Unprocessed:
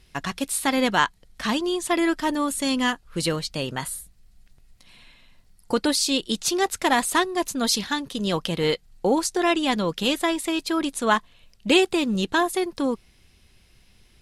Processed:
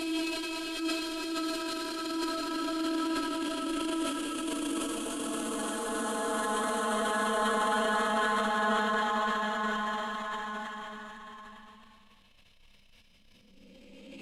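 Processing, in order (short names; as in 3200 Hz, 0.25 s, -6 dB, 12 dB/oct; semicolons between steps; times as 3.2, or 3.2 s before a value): notches 50/100/150/200 Hz; Paulstretch 15×, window 0.50 s, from 10.58; transient shaper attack -8 dB, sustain +8 dB; gain -7.5 dB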